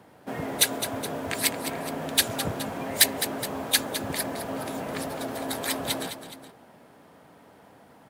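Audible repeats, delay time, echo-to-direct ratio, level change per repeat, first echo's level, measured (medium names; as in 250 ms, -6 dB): 2, 210 ms, -9.5 dB, -5.0 dB, -10.5 dB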